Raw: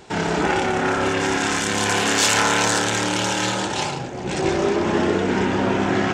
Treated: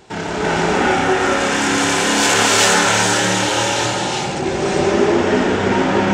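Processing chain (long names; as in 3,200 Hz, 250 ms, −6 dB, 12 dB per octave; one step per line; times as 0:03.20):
reverb whose tail is shaped and stops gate 430 ms rising, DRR −5.5 dB
level −1.5 dB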